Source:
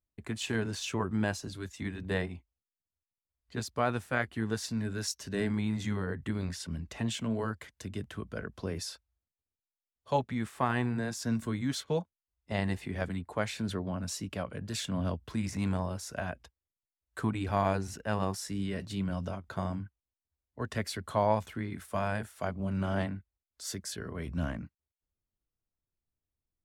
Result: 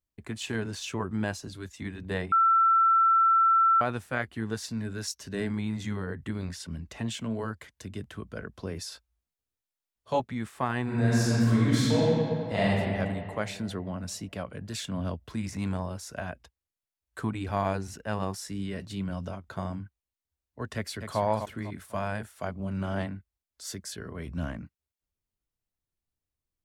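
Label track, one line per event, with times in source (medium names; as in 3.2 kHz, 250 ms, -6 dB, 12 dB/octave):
2.320000	3.810000	bleep 1.34 kHz -18 dBFS
8.900000	10.200000	doubling 18 ms -2 dB
10.830000	12.630000	reverb throw, RT60 2.5 s, DRR -8.5 dB
20.750000	21.200000	echo throw 250 ms, feedback 35%, level -7.5 dB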